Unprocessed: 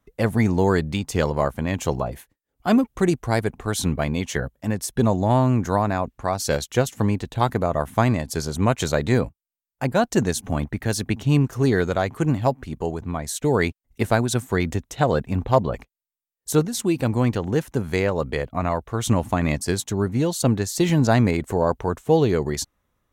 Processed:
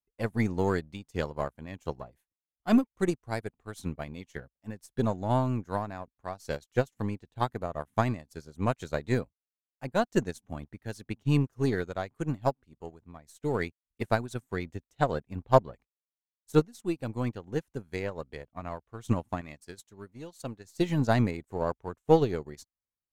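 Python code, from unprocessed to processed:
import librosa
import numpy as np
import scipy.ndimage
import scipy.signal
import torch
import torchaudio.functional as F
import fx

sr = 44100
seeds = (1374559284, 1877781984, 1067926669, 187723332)

y = np.where(x < 0.0, 10.0 ** (-3.0 / 20.0) * x, x)
y = fx.low_shelf(y, sr, hz=480.0, db=-6.0, at=(19.41, 20.65))
y = fx.upward_expand(y, sr, threshold_db=-34.0, expansion=2.5)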